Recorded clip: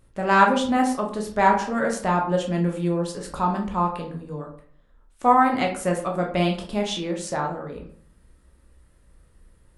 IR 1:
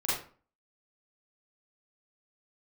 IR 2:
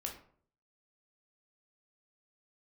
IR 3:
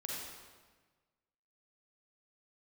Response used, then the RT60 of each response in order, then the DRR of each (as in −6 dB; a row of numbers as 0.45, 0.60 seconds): 2; 0.40, 0.55, 1.4 seconds; −9.5, 1.0, −4.0 decibels